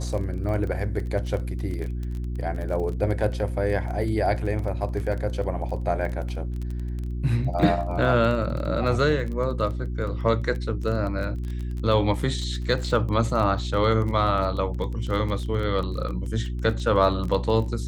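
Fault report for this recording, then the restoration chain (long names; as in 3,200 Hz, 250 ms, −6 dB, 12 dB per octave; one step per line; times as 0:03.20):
surface crackle 21 per second −30 dBFS
mains hum 60 Hz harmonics 6 −29 dBFS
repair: click removal
hum removal 60 Hz, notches 6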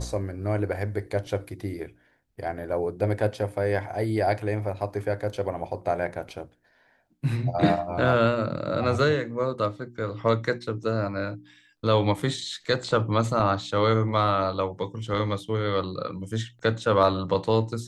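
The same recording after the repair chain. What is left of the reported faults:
none of them is left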